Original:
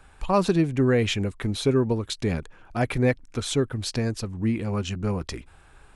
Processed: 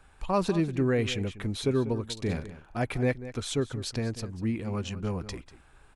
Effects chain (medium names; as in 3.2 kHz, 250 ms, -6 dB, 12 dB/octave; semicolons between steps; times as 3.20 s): 2.13–2.80 s: doubling 40 ms -7.5 dB; echo from a far wall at 33 m, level -14 dB; trim -5 dB